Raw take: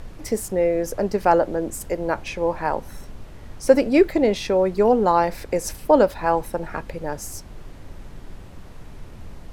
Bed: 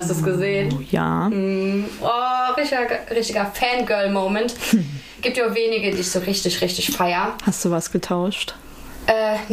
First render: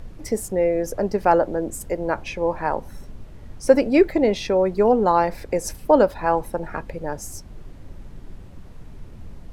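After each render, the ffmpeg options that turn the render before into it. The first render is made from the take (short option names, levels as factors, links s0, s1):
-af "afftdn=nr=6:nf=-41"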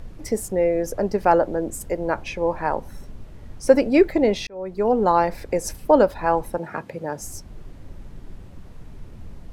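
-filter_complex "[0:a]asettb=1/sr,asplit=3[s0][s1][s2];[s0]atrim=end=6.584[s3];[s1]atrim=start=6.58:end=7.2,asetpts=PTS-STARTPTS,afade=t=in:d=0.004:c=qsin,afade=t=out:st=0.616:d=0.004:c=qsin,highpass=f=110:w=0.5412,highpass=f=110:w=1.3066[s4];[s2]atrim=start=7.196[s5];[s3][s4]acrossfade=d=0.004:c1=hsin:c2=qsin[s6];[s6][s5]acrossfade=d=0.004:c1=qsin:c2=hsin,asplit=2[s7][s8];[s7]atrim=end=4.47,asetpts=PTS-STARTPTS,afade=t=out:st=4.466:d=0.004:c=hsin[s9];[s8]atrim=start=4.47,asetpts=PTS-STARTPTS,afade=t=in:d=0.58[s10];[s9][s10]concat=n=2:v=0:a=1"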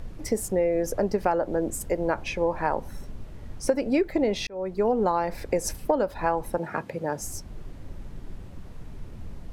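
-af "acompressor=threshold=0.112:ratio=12"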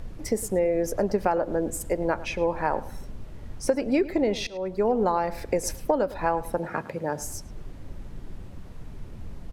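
-filter_complex "[0:a]asplit=2[s0][s1];[s1]adelay=107,lowpass=f=3900:p=1,volume=0.141,asplit=2[s2][s3];[s3]adelay=107,lowpass=f=3900:p=1,volume=0.3,asplit=2[s4][s5];[s5]adelay=107,lowpass=f=3900:p=1,volume=0.3[s6];[s0][s2][s4][s6]amix=inputs=4:normalize=0"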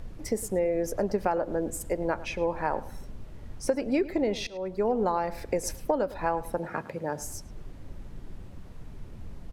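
-af "volume=0.708"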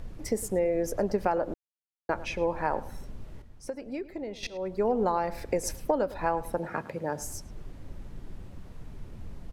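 -filter_complex "[0:a]asplit=5[s0][s1][s2][s3][s4];[s0]atrim=end=1.54,asetpts=PTS-STARTPTS,afade=t=out:st=1.536:d=0.004:c=hsin[s5];[s1]atrim=start=1.54:end=2.09,asetpts=PTS-STARTPTS,volume=0[s6];[s2]atrim=start=2.09:end=3.422,asetpts=PTS-STARTPTS,afade=t=in:d=0.004:c=hsin[s7];[s3]atrim=start=3.418:end=4.432,asetpts=PTS-STARTPTS,volume=0.316[s8];[s4]atrim=start=4.428[s9];[s5][s6][s7]concat=n=3:v=0:a=1[s10];[s10][s8]acrossfade=d=0.004:c1=hsin:c2=hsin[s11];[s11][s9]acrossfade=d=0.004:c1=hsin:c2=hsin"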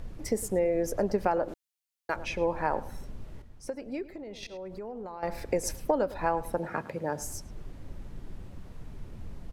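-filter_complex "[0:a]asettb=1/sr,asplit=3[s0][s1][s2];[s0]atrim=end=1.484[s3];[s1]atrim=start=1.48:end=2.16,asetpts=PTS-STARTPTS,afade=t=in:d=0.004:c=qsin,afade=t=out:st=0.676:d=0.004:c=qsin,tiltshelf=f=1200:g=-7.5[s4];[s2]atrim=start=2.156[s5];[s3][s4]acrossfade=d=0.004:c1=hsin:c2=qsin[s6];[s6][s5]acrossfade=d=0.004:c1=qsin:c2=hsin,asettb=1/sr,asplit=3[s7][s8][s9];[s7]atrim=end=4.154[s10];[s8]atrim=start=4.15:end=5.23,asetpts=PTS-STARTPTS,afade=t=in:d=0.004:c=qsin,afade=t=out:st=1.076:d=0.004:c=qsin,acompressor=threshold=0.0141:ratio=6:attack=3.2:release=140:knee=1:detection=peak[s11];[s9]atrim=start=5.226[s12];[s10][s11]acrossfade=d=0.004:c1=hsin:c2=qsin[s13];[s13][s12]acrossfade=d=0.004:c1=qsin:c2=hsin"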